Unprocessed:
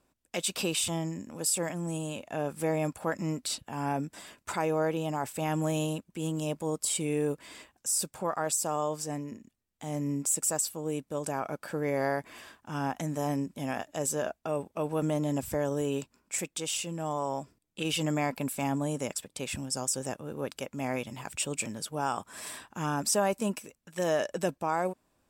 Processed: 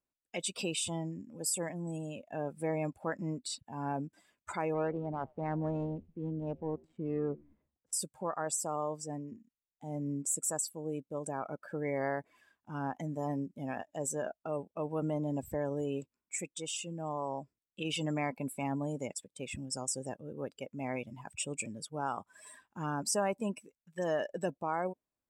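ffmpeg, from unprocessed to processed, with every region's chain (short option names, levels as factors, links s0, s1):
-filter_complex "[0:a]asettb=1/sr,asplit=3[s0][s1][s2];[s0]atrim=end=4.744[s3];[s1]atrim=start=4.74:end=7.93,asetpts=PTS-STARTPTS,afade=t=in:d=0.004:c=qsin,afade=t=out:st=3.186:d=0.004:c=qsin,adynamicsmooth=sensitivity=2.5:basefreq=570,asplit=6[s4][s5][s6][s7][s8][s9];[s5]adelay=86,afreqshift=-74,volume=0.0794[s10];[s6]adelay=172,afreqshift=-148,volume=0.0501[s11];[s7]adelay=258,afreqshift=-222,volume=0.0316[s12];[s8]adelay=344,afreqshift=-296,volume=0.02[s13];[s9]adelay=430,afreqshift=-370,volume=0.0124[s14];[s4][s10][s11][s12][s13][s14]amix=inputs=6:normalize=0,atrim=end_sample=140679[s15];[s2]atrim=start=7.926[s16];[s3][s15]acrossfade=d=0.004:c1=hsin:c2=qsin[s17];[s17][s16]acrossfade=d=0.004:c1=qsin:c2=hsin,afftdn=nr=18:nf=-38,equalizer=f=2100:w=4.6:g=3,volume=0.596"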